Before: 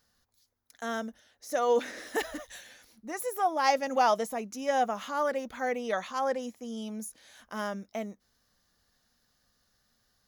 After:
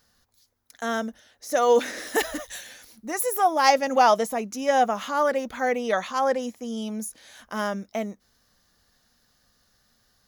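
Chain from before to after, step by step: 1.56–3.7 high shelf 5900 Hz +6 dB; gain +6.5 dB

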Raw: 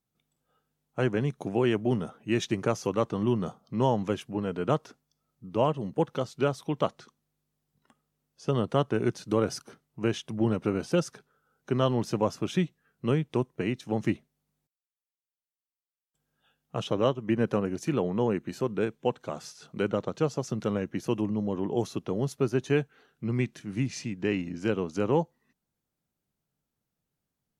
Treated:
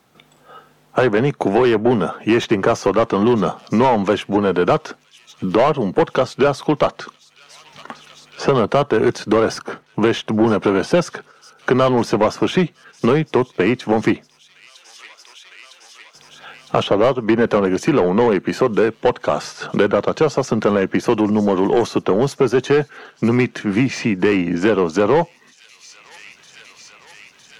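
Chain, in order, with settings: gate -59 dBFS, range -8 dB; overdrive pedal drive 22 dB, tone 1600 Hz, clips at -10 dBFS; on a send: thin delay 0.958 s, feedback 71%, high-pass 4200 Hz, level -21.5 dB; on the sum: three-band squash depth 70%; gain +6.5 dB

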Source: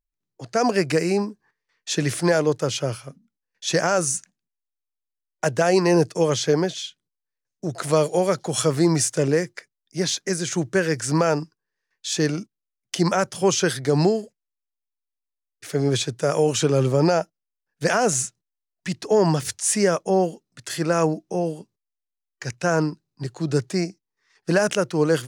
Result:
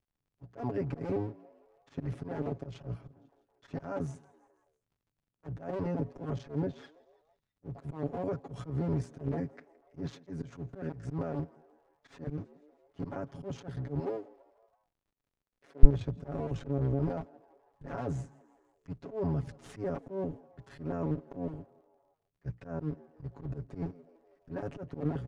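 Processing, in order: cycle switcher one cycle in 2, muted; LPF 1300 Hz 6 dB/oct; limiter -19 dBFS, peak gain reduction 10.5 dB; HPF 79 Hz 12 dB/oct, from 13.99 s 370 Hz, from 15.83 s 46 Hz; wow and flutter 28 cents; frequency-shifting echo 0.165 s, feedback 61%, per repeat +77 Hz, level -23.5 dB; auto swell 0.119 s; comb 7.2 ms, depth 75%; crackle 76/s -53 dBFS; tilt -3.5 dB/oct; gain -11 dB

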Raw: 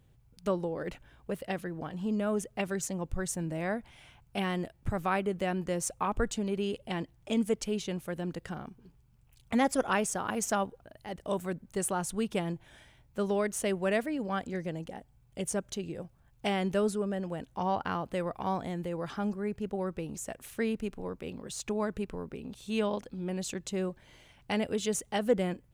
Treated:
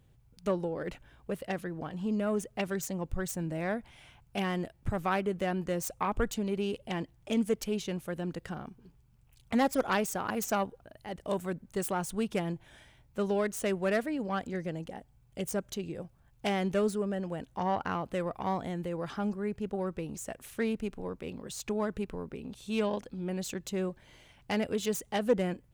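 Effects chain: self-modulated delay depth 0.1 ms

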